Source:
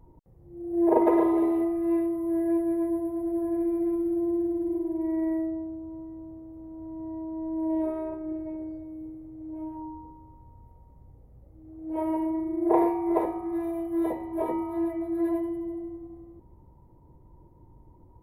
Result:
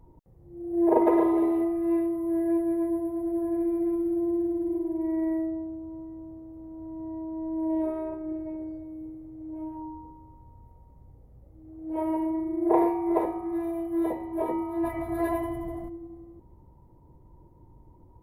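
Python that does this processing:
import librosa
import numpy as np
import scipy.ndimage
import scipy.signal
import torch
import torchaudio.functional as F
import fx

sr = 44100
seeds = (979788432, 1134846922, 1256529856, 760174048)

y = fx.spec_clip(x, sr, under_db=16, at=(14.83, 15.88), fade=0.02)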